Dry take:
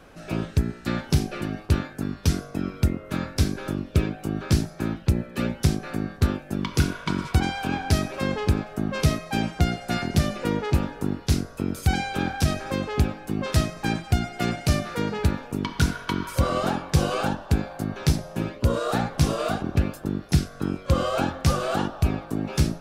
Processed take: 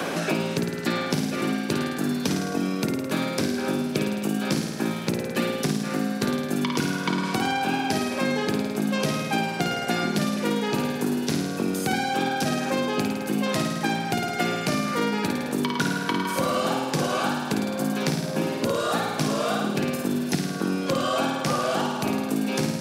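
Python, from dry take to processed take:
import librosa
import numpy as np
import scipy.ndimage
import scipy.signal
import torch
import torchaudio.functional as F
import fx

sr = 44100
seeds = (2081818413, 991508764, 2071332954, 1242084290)

y = scipy.signal.sosfilt(scipy.signal.butter(4, 180.0, 'highpass', fs=sr, output='sos'), x)
y = fx.notch(y, sr, hz=1300.0, q=16.0)
y = fx.room_flutter(y, sr, wall_m=9.1, rt60_s=0.86)
y = fx.band_squash(y, sr, depth_pct=100)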